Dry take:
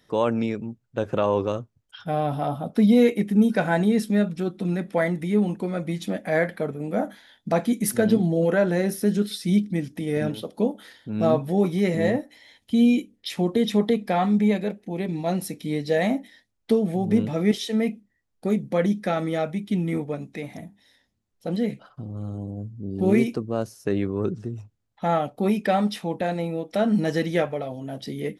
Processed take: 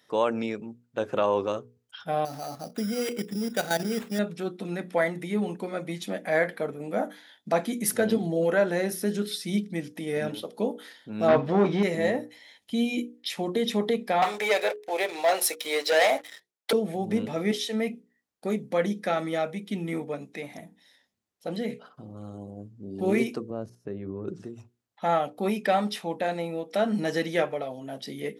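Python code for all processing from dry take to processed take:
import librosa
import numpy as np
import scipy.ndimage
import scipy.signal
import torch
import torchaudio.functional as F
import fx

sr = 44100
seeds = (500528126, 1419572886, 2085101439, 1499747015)

y = fx.chain(x, sr, fx.notch(hz=1000.0, q=7.1),
    fx.level_steps(step_db=11),
    fx.sample_hold(seeds[0], rate_hz=5300.0, jitter_pct=0), at=(2.25, 4.19))
y = fx.chain(y, sr, fx.median_filter(points=3),
    fx.leveller(passes=2),
    fx.air_absorb(metres=160.0), at=(11.28, 11.83))
y = fx.chain(y, sr, fx.highpass(hz=490.0, slope=24),
    fx.leveller(passes=3), at=(14.22, 16.73))
y = fx.chain(y, sr, fx.tilt_eq(slope=-4.0),
    fx.level_steps(step_db=14), at=(23.5, 24.28))
y = fx.highpass(y, sr, hz=380.0, slope=6)
y = fx.hum_notches(y, sr, base_hz=60, count=8)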